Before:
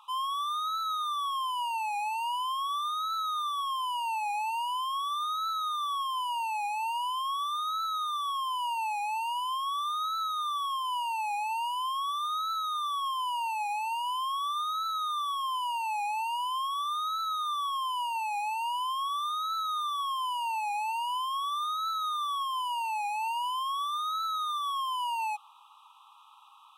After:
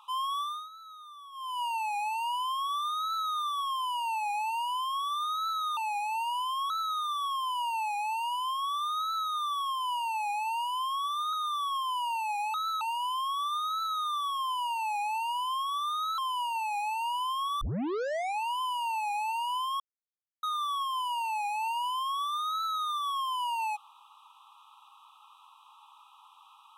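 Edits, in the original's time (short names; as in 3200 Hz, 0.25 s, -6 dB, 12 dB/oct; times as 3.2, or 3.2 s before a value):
0.38–1.63 dip -16.5 dB, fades 0.31 s
5.77–6.45 cut
7.38–7.74 cut
12.37–12.64 move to 13.85
17.22–17.78 cut
19.21 tape start 1.01 s
21.4–22.03 mute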